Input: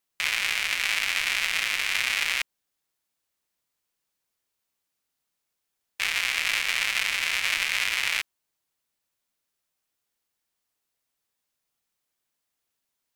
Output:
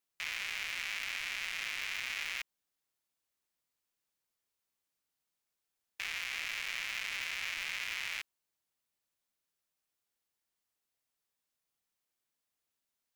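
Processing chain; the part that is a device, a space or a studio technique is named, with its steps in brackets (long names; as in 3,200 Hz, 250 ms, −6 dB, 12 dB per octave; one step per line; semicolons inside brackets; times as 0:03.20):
limiter into clipper (brickwall limiter −15 dBFS, peak gain reduction 7.5 dB; hard clipping −20.5 dBFS, distortion −15 dB)
level −6 dB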